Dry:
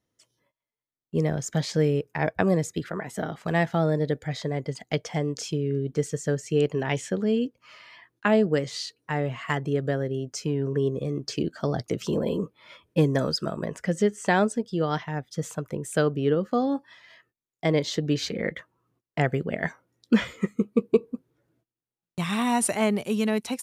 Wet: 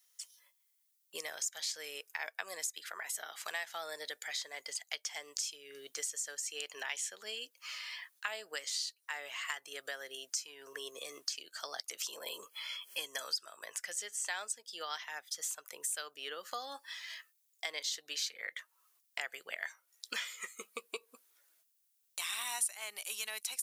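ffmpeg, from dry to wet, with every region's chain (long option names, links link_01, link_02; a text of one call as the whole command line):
ffmpeg -i in.wav -filter_complex "[0:a]asettb=1/sr,asplit=3[link_01][link_02][link_03];[link_01]atrim=end=12.434[link_04];[link_02]atrim=start=12.43:end=13.22,asetpts=PTS-STARTPTS,afade=type=in:duration=0.004:curve=qsin,afade=type=out:start_time=0.786:duration=0.004:curve=qsin,equalizer=frequency=3200:width_type=o:width=0.23:gain=7,acompressor=mode=upward:threshold=-40dB:ratio=2.5:attack=3.2:release=140:knee=2.83:detection=peak,asuperstop=centerf=3700:order=20:qfactor=7.3[link_05];[link_03]atrim=start=13.216[link_06];[link_04][link_05]acrossfade=duration=0.004:curve1=hsin:curve2=qsin[link_07];[link_07][link_06]acrossfade=duration=0.004:curve1=qsin:curve2=hsin,highpass=740,aderivative,acompressor=threshold=-58dB:ratio=3,volume=17dB" out.wav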